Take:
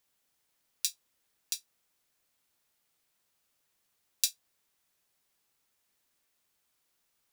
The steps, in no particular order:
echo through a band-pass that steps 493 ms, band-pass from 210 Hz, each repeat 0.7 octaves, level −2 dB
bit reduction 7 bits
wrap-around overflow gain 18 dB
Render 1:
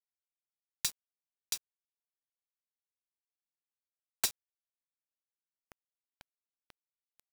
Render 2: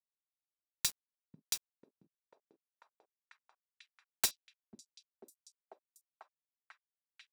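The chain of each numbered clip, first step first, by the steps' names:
wrap-around overflow, then echo through a band-pass that steps, then bit reduction
wrap-around overflow, then bit reduction, then echo through a band-pass that steps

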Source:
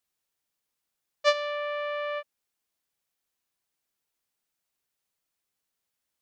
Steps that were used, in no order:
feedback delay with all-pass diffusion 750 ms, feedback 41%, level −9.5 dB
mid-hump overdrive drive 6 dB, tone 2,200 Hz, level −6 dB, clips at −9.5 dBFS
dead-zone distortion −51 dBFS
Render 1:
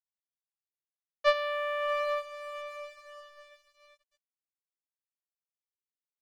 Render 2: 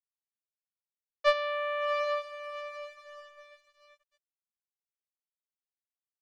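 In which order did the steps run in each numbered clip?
mid-hump overdrive, then feedback delay with all-pass diffusion, then dead-zone distortion
feedback delay with all-pass diffusion, then dead-zone distortion, then mid-hump overdrive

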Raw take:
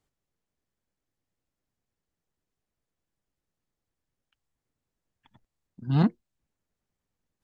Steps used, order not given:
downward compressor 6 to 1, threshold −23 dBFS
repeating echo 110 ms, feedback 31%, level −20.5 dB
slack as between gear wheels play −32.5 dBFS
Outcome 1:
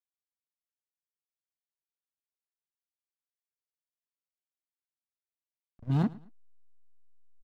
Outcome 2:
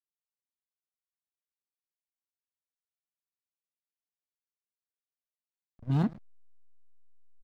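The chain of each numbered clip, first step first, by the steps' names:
slack as between gear wheels, then downward compressor, then repeating echo
repeating echo, then slack as between gear wheels, then downward compressor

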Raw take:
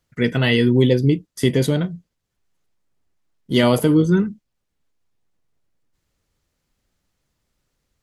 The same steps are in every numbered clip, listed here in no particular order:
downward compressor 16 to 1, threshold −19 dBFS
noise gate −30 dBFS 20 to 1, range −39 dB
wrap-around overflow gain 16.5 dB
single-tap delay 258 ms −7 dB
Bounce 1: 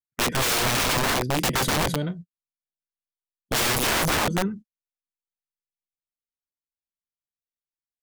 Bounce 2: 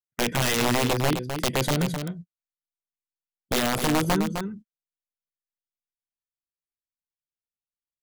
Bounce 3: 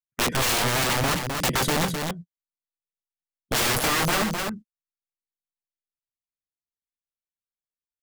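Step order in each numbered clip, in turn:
noise gate, then single-tap delay, then wrap-around overflow, then downward compressor
noise gate, then downward compressor, then wrap-around overflow, then single-tap delay
noise gate, then wrap-around overflow, then single-tap delay, then downward compressor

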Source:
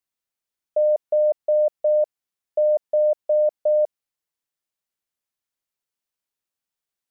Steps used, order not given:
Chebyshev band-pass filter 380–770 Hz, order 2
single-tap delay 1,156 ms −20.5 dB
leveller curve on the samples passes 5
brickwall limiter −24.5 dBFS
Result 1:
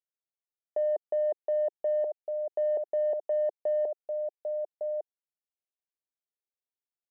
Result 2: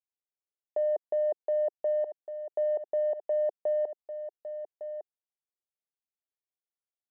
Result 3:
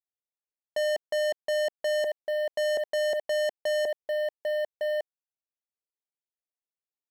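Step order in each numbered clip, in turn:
brickwall limiter, then single-tap delay, then leveller curve on the samples, then Chebyshev band-pass filter
leveller curve on the samples, then single-tap delay, then brickwall limiter, then Chebyshev band-pass filter
single-tap delay, then brickwall limiter, then Chebyshev band-pass filter, then leveller curve on the samples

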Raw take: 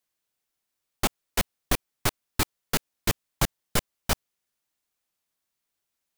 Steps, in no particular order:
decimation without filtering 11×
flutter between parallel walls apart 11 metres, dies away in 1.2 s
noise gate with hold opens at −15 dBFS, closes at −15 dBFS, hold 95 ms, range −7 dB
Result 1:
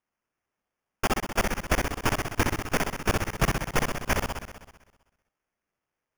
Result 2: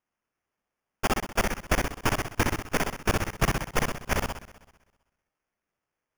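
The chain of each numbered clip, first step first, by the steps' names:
noise gate with hold, then flutter between parallel walls, then decimation without filtering
flutter between parallel walls, then decimation without filtering, then noise gate with hold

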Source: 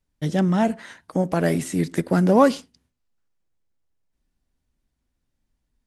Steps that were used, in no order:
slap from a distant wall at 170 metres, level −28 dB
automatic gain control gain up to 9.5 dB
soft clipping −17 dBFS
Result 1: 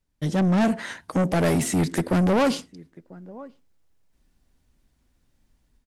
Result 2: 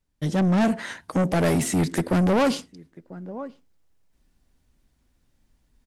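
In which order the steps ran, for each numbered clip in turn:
automatic gain control, then slap from a distant wall, then soft clipping
slap from a distant wall, then automatic gain control, then soft clipping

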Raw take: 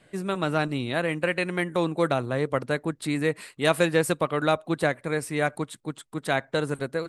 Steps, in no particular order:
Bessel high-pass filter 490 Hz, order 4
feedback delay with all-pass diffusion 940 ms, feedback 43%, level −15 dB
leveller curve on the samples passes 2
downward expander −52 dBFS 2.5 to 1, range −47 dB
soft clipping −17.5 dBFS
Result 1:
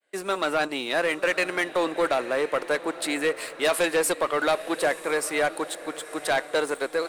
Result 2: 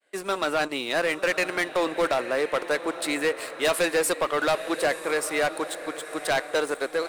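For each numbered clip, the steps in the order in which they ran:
soft clipping, then Bessel high-pass filter, then downward expander, then leveller curve on the samples, then feedback delay with all-pass diffusion
downward expander, then Bessel high-pass filter, then leveller curve on the samples, then feedback delay with all-pass diffusion, then soft clipping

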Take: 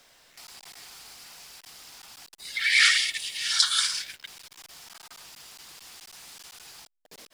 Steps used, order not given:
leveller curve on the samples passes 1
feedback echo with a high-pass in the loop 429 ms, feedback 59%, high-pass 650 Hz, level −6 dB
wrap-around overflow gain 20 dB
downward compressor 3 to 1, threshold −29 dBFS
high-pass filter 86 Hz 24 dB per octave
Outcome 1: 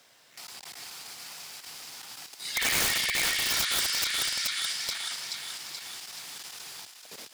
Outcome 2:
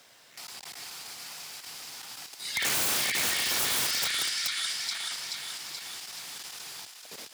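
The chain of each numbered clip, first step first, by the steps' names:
feedback echo with a high-pass in the loop, then downward compressor, then leveller curve on the samples, then high-pass filter, then wrap-around overflow
feedback echo with a high-pass in the loop, then wrap-around overflow, then downward compressor, then leveller curve on the samples, then high-pass filter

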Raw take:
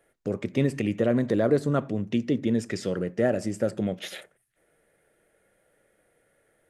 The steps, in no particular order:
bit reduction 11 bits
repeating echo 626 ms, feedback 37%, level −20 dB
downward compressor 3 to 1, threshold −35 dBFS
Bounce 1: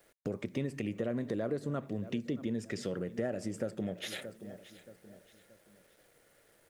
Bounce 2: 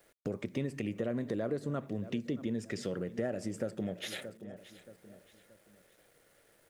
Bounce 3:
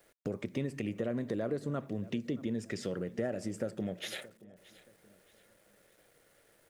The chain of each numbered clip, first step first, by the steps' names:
repeating echo, then bit reduction, then downward compressor
bit reduction, then repeating echo, then downward compressor
bit reduction, then downward compressor, then repeating echo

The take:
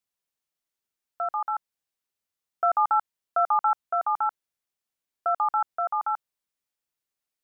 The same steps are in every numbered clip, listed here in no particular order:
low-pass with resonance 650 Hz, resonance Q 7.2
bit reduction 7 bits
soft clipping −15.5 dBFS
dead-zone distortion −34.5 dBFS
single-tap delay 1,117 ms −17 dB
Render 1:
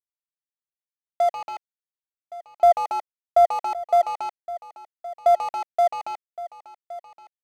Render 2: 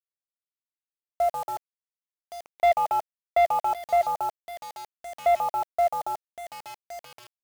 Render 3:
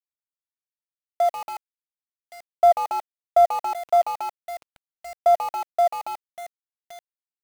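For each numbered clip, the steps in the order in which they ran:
bit reduction, then soft clipping, then low-pass with resonance, then dead-zone distortion, then single-tap delay
dead-zone distortion, then low-pass with resonance, then soft clipping, then single-tap delay, then bit reduction
single-tap delay, then soft clipping, then low-pass with resonance, then bit reduction, then dead-zone distortion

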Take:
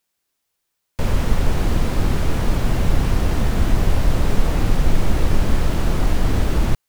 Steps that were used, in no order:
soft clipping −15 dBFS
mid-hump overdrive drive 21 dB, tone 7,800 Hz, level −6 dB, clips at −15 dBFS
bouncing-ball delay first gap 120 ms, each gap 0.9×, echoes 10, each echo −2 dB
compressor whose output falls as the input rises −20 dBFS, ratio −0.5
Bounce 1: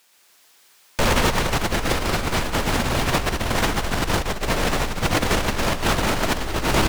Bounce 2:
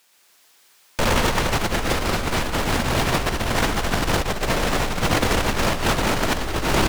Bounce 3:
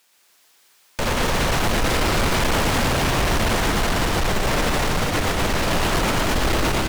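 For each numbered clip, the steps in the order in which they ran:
mid-hump overdrive, then soft clipping, then bouncing-ball delay, then compressor whose output falls as the input rises
soft clipping, then mid-hump overdrive, then bouncing-ball delay, then compressor whose output falls as the input rises
mid-hump overdrive, then compressor whose output falls as the input rises, then bouncing-ball delay, then soft clipping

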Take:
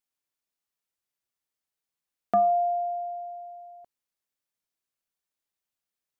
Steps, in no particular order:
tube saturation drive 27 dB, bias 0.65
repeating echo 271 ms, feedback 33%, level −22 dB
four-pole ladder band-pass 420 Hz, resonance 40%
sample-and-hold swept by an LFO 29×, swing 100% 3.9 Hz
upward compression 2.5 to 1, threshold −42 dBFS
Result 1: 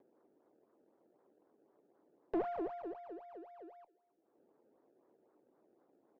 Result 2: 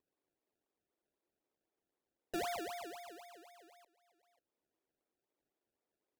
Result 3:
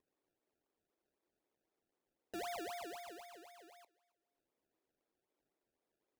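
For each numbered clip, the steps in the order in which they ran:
sample-and-hold swept by an LFO, then four-pole ladder band-pass, then upward compression, then repeating echo, then tube saturation
repeating echo, then upward compression, then four-pole ladder band-pass, then sample-and-hold swept by an LFO, then tube saturation
tube saturation, then upward compression, then four-pole ladder band-pass, then sample-and-hold swept by an LFO, then repeating echo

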